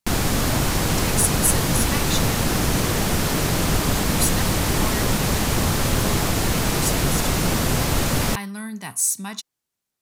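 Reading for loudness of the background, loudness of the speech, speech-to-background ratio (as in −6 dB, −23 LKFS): −21.0 LKFS, −26.0 LKFS, −5.0 dB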